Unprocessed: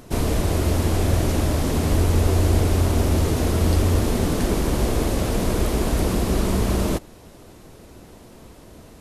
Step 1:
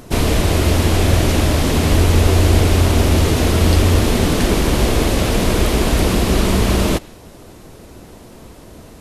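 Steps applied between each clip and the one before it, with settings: dynamic EQ 2900 Hz, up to +6 dB, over -47 dBFS, Q 0.75; gain +5.5 dB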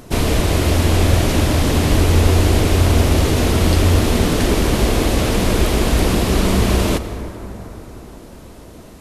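reverb RT60 4.5 s, pre-delay 83 ms, DRR 10.5 dB; gain -1 dB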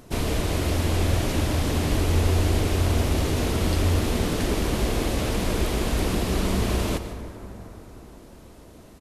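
echo 0.149 s -15 dB; gain -8.5 dB

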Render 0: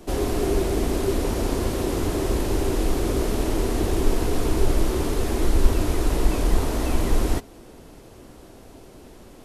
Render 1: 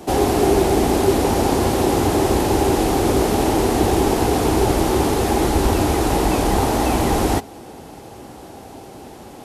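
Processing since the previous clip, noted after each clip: HPF 76 Hz 12 dB/oct; bell 810 Hz +12 dB 0.23 oct; gain +7.5 dB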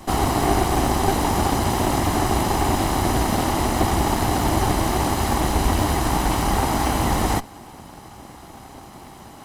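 minimum comb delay 0.99 ms; gain -1 dB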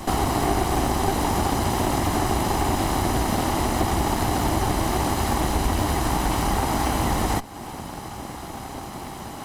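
compressor 2:1, threshold -33 dBFS, peak gain reduction 10.5 dB; gain +6.5 dB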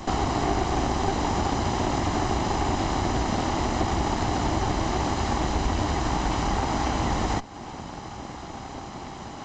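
downsampling 16000 Hz; gain -2.5 dB

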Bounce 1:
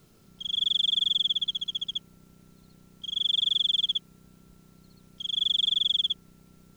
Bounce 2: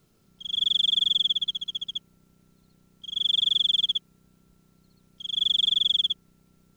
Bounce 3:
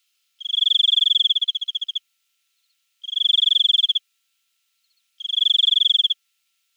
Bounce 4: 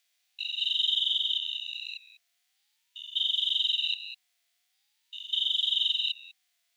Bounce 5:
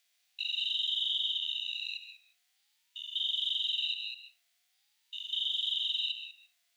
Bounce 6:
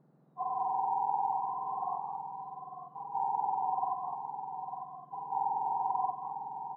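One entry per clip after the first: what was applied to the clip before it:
upward expander 1.5:1, over -40 dBFS; gain +2.5 dB
resonant high-pass 2800 Hz, resonance Q 2.1
stepped spectrum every 0.2 s; ring modulator with a swept carrier 460 Hz, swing 45%, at 0.45 Hz
limiter -23.5 dBFS, peak gain reduction 7.5 dB; reverb RT60 0.30 s, pre-delay 0.128 s, DRR 9.5 dB
spectrum mirrored in octaves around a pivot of 1700 Hz; on a send: echo 0.901 s -8 dB

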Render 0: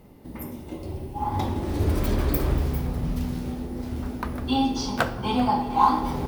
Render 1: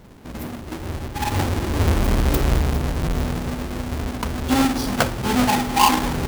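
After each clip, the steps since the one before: half-waves squared off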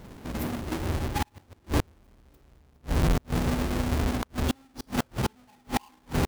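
flipped gate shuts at -17 dBFS, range -39 dB

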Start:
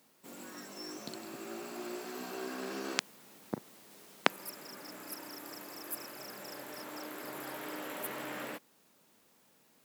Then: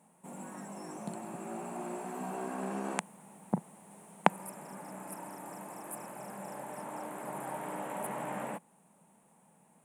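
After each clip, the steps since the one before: EQ curve 110 Hz 0 dB, 180 Hz +14 dB, 280 Hz -1 dB, 440 Hz 0 dB, 870 Hz +10 dB, 1300 Hz -2 dB, 2500 Hz -4 dB, 4900 Hz -19 dB, 9200 Hz +8 dB, 14000 Hz -16 dB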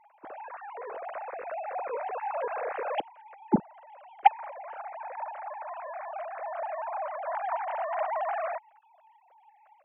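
sine-wave speech; gain +6.5 dB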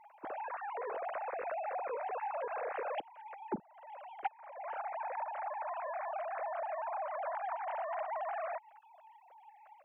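compressor 8:1, threshold -37 dBFS, peak gain reduction 24 dB; gain +1.5 dB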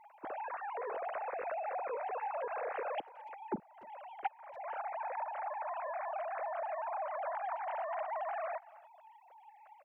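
speakerphone echo 0.29 s, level -21 dB

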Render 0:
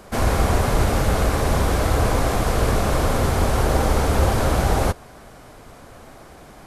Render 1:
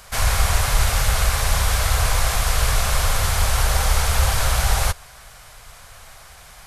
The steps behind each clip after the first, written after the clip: passive tone stack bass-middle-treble 10-0-10; gain +8.5 dB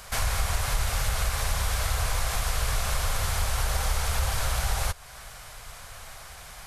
compressor 2:1, threshold -29 dBFS, peak gain reduction 10 dB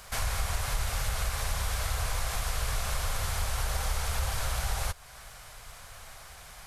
crackle 230/s -49 dBFS; gain -4 dB

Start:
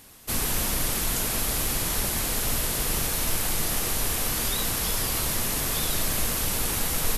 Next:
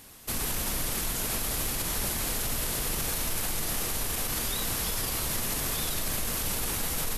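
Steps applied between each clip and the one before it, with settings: limiter -20.5 dBFS, peak gain reduction 8.5 dB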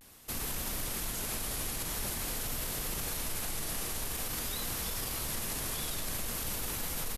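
vibrato 0.48 Hz 52 cents; gain -5.5 dB

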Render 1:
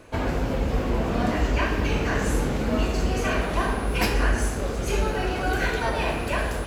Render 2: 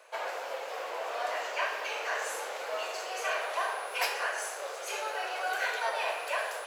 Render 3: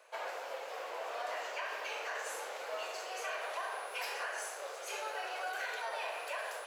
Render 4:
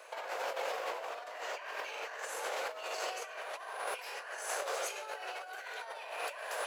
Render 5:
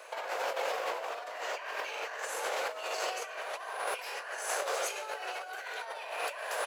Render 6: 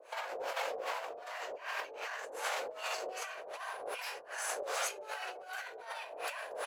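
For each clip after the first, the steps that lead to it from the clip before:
steep high-pass 530 Hz 36 dB/oct; gain -4 dB
limiter -24.5 dBFS, peak gain reduction 7 dB; gain -5 dB
negative-ratio compressor -44 dBFS, ratio -0.5; gain +4.5 dB
echo 0.481 s -22 dB; gain +3.5 dB
harmonic tremolo 2.6 Hz, depth 100%, crossover 610 Hz; gain +1.5 dB

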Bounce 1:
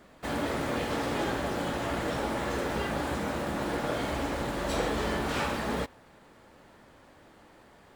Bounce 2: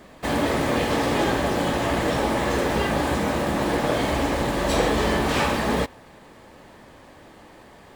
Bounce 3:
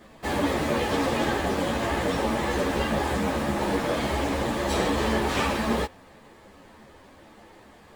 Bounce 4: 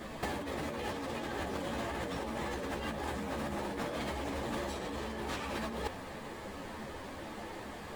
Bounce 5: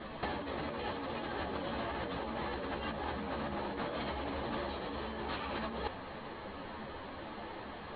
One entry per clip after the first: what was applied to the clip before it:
notch 1400 Hz, Q 9.7; gain +8.5 dB
ensemble effect
negative-ratio compressor -35 dBFS, ratio -1; gain -2.5 dB
rippled Chebyshev low-pass 4300 Hz, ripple 3 dB; gain +1 dB

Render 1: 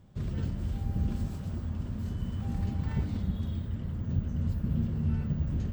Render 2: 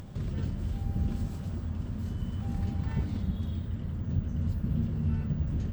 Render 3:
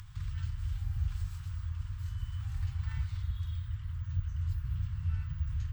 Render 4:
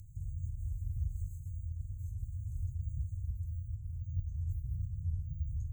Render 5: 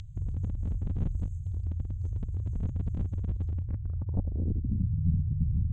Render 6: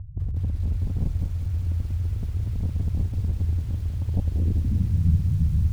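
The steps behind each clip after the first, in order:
upward compressor, threshold -32 dBFS
inverse Chebyshev band-stop 240–520 Hz, stop band 60 dB; gain -1.5 dB
FFT band-reject 430–6200 Hz; bell 12000 Hz +2 dB; gain -3 dB
one-sided fold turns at -35 dBFS; upward compressor, threshold -48 dBFS; low-pass sweep 3500 Hz -> 160 Hz, 3.5–4.86; gain +8 dB
LPF 1000 Hz 24 dB/oct; bell 77 Hz +4 dB 0.58 oct; lo-fi delay 0.196 s, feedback 80%, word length 8-bit, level -11 dB; gain +3 dB

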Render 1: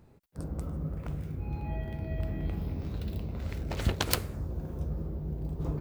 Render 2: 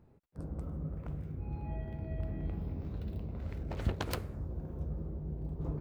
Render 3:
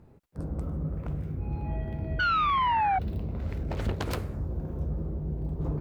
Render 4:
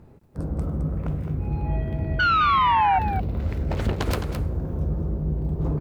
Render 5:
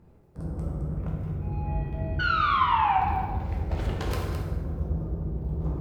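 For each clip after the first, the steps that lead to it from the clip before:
high shelf 2600 Hz -12 dB; gain -4 dB
painted sound fall, 2.19–2.99, 740–1500 Hz -27 dBFS; in parallel at -1 dB: limiter -26 dBFS, peak gain reduction 7 dB; on the sum: sine folder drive 5 dB, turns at -15.5 dBFS; gain -7 dB
echo 0.214 s -8.5 dB; gain +5.5 dB
plate-style reverb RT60 1.4 s, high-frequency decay 0.65×, DRR -1 dB; gain -8 dB

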